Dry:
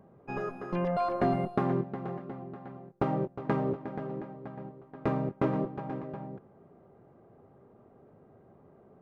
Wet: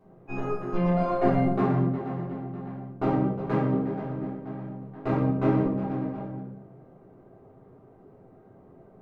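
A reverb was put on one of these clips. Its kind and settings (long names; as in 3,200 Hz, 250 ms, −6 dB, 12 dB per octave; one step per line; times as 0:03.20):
rectangular room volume 170 cubic metres, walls mixed, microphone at 3.4 metres
level −7.5 dB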